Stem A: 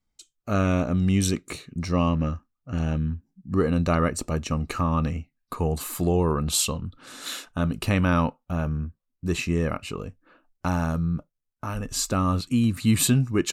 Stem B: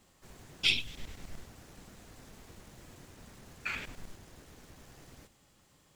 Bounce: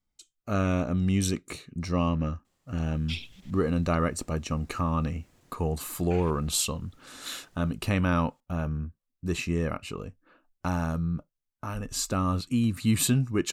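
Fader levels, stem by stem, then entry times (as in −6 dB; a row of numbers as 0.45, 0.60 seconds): −3.5, −9.5 decibels; 0.00, 2.45 seconds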